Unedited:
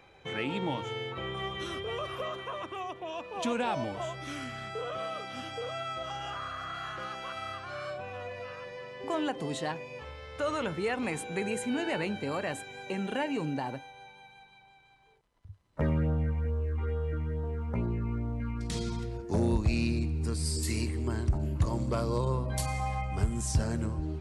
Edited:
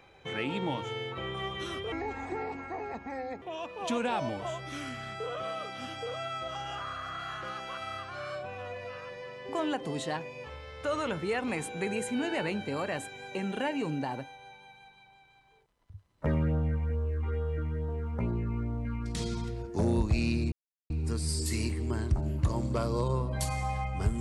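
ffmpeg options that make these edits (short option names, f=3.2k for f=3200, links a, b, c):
-filter_complex "[0:a]asplit=4[a][b][c][d];[a]atrim=end=1.924[e];[b]atrim=start=1.92:end=2.97,asetpts=PTS-STARTPTS,asetrate=30870,aresample=44100[f];[c]atrim=start=2.966:end=20.07,asetpts=PTS-STARTPTS,afade=t=out:st=17.1:d=0.004:c=hsin,apad=pad_dur=0.38[g];[d]atrim=start=20.07,asetpts=PTS-STARTPTS,afade=t=in:d=0.004:c=hsin[h];[e][f]acrossfade=d=0.004:c1=hsin:c2=hsin[i];[g][h]concat=n=2:v=0:a=1[j];[i][j]acrossfade=d=0.004:c1=hsin:c2=hsin"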